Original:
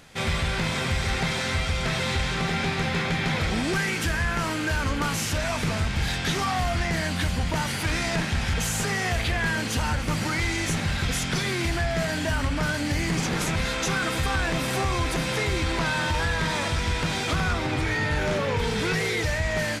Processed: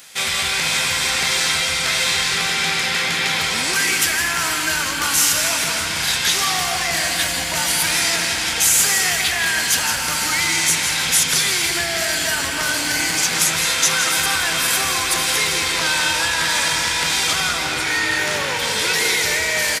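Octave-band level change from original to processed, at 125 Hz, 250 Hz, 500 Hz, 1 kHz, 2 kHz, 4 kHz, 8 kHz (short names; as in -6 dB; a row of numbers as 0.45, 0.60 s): -8.5, -4.0, 0.0, +5.0, +8.5, +12.5, +16.5 dB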